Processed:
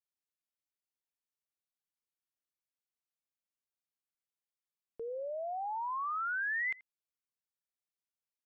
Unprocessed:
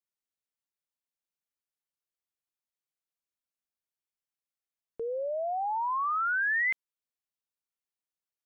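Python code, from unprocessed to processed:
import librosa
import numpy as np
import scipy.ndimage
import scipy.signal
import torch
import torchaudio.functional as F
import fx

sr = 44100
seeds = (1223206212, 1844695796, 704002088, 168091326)

y = x + 10.0 ** (-22.5 / 20.0) * np.pad(x, (int(83 * sr / 1000.0), 0))[:len(x)]
y = y * librosa.db_to_amplitude(-6.5)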